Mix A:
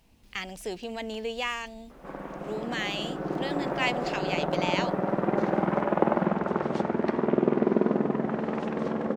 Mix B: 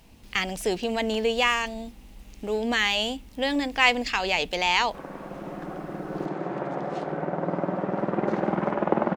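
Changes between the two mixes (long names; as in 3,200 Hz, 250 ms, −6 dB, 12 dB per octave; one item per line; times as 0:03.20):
speech +8.5 dB
background: entry +2.90 s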